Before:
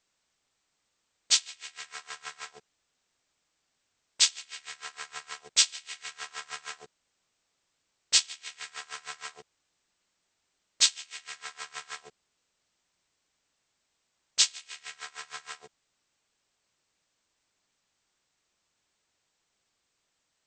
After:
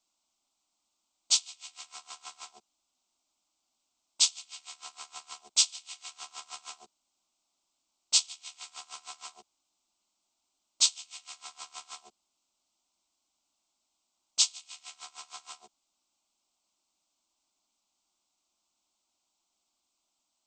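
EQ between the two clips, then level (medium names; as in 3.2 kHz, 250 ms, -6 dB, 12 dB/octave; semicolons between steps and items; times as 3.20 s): bass shelf 190 Hz -6 dB; static phaser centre 470 Hz, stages 6; 0.0 dB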